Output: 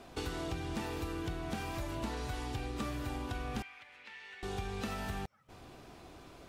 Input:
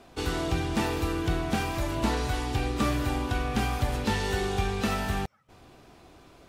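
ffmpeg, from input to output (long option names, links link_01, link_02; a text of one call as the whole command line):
ffmpeg -i in.wav -filter_complex "[0:a]acompressor=threshold=-37dB:ratio=4,asettb=1/sr,asplit=3[link_01][link_02][link_03];[link_01]atrim=end=3.624[link_04];[link_02]atrim=start=3.62:end=4.43,asetpts=PTS-STARTPTS,afade=type=in:duration=0.004:curve=qsin,afade=type=out:start_time=0.806:duration=0.004:curve=qsin,bandpass=frequency=2200:width_type=q:width=3:csg=0[link_05];[link_03]atrim=start=4.426[link_06];[link_04][link_05]acrossfade=duration=0.004:curve1=hsin:curve2=qsin[link_07];[link_07][link_06]acrossfade=duration=0.004:curve1=qsin:curve2=hsin" out.wav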